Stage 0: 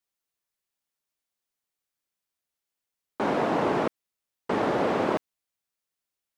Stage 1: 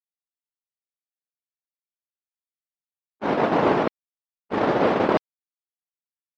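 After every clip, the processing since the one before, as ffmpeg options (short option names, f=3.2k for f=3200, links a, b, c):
-af "afftdn=nr=13:nf=-52,agate=range=-53dB:threshold=-24dB:ratio=16:detection=peak,volume=7.5dB"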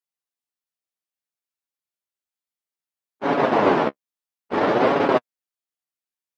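-af "lowshelf=f=130:g=-8,flanger=delay=7:depth=9.3:regen=21:speed=0.6:shape=sinusoidal,volume=6dB"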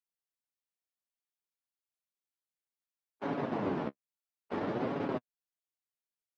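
-filter_complex "[0:a]acrossover=split=270[a][b];[b]acompressor=threshold=-30dB:ratio=4[c];[a][c]amix=inputs=2:normalize=0,volume=-7.5dB"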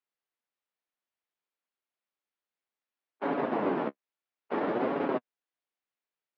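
-af "highpass=260,lowpass=2.9k,volume=6dB"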